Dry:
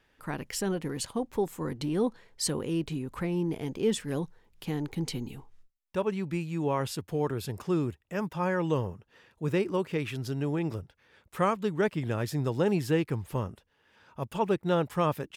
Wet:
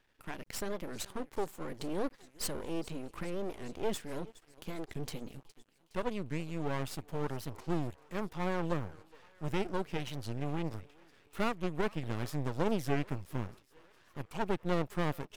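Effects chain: thinning echo 0.414 s, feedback 70%, high-pass 440 Hz, level -20.5 dB; half-wave rectifier; record warp 45 rpm, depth 250 cents; gain -2 dB

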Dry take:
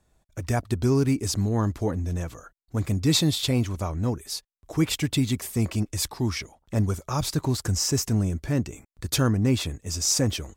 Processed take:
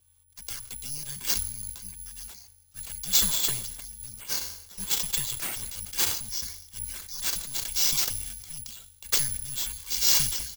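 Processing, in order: Chebyshev band-stop 330–3300 Hz, order 5; hum 50 Hz, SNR 24 dB; tone controls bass -14 dB, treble +7 dB; comb 1.7 ms, depth 66%; transient shaper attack 0 dB, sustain +6 dB; notches 60/120/180/240 Hz; frequency shift -130 Hz; Schroeder reverb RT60 1.2 s, combs from 27 ms, DRR 16.5 dB; careless resampling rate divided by 4×, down none, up zero stuff; sustainer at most 74 dB/s; gain -9.5 dB

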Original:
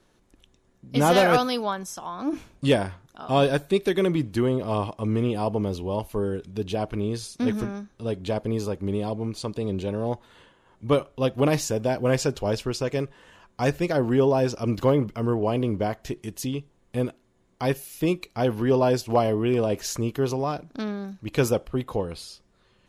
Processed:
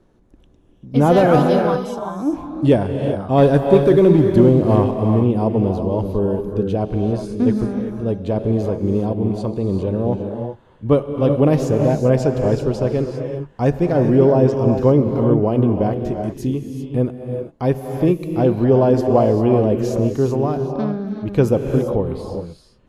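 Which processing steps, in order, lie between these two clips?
tilt shelf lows +8.5 dB, about 1200 Hz; 3.38–4.95 sample leveller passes 1; non-linear reverb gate 0.42 s rising, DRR 4.5 dB

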